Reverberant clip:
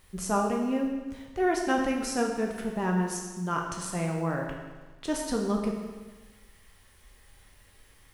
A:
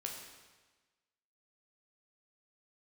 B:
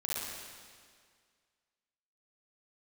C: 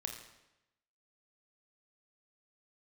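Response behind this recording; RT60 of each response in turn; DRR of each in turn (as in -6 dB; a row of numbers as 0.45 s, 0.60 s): A; 1.3 s, 1.9 s, 0.90 s; 0.0 dB, -7.5 dB, 3.0 dB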